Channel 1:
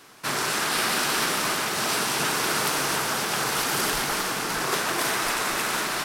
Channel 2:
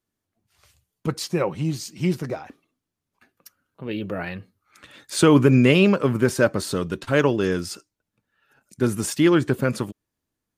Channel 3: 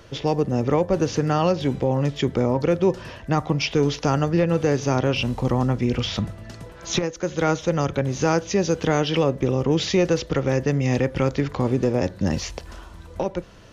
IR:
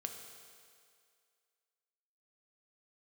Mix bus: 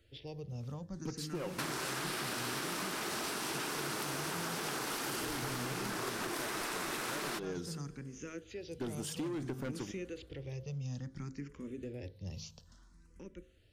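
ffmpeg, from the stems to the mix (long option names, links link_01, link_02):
-filter_complex "[0:a]adelay=1350,volume=0.5dB[link_01];[1:a]asoftclip=type=hard:threshold=-20dB,volume=-15dB,asplit=2[link_02][link_03];[link_03]volume=-7.5dB[link_04];[2:a]equalizer=frequency=820:width_type=o:width=2.1:gain=-14,bandreject=frequency=52.92:width_type=h:width=4,bandreject=frequency=105.84:width_type=h:width=4,bandreject=frequency=158.76:width_type=h:width=4,bandreject=frequency=211.68:width_type=h:width=4,bandreject=frequency=264.6:width_type=h:width=4,bandreject=frequency=317.52:width_type=h:width=4,bandreject=frequency=370.44:width_type=h:width=4,bandreject=frequency=423.36:width_type=h:width=4,bandreject=frequency=476.28:width_type=h:width=4,bandreject=frequency=529.2:width_type=h:width=4,asplit=2[link_05][link_06];[link_06]afreqshift=0.59[link_07];[link_05][link_07]amix=inputs=2:normalize=1,volume=-14.5dB,asplit=2[link_08][link_09];[link_09]volume=-21.5dB[link_10];[link_01][link_02]amix=inputs=2:normalize=0,equalizer=frequency=320:width_type=o:width=0.81:gain=6.5,acompressor=threshold=-34dB:ratio=2,volume=0dB[link_11];[3:a]atrim=start_sample=2205[link_12];[link_04][link_10]amix=inputs=2:normalize=0[link_13];[link_13][link_12]afir=irnorm=-1:irlink=0[link_14];[link_08][link_11][link_14]amix=inputs=3:normalize=0,acompressor=threshold=-35dB:ratio=6"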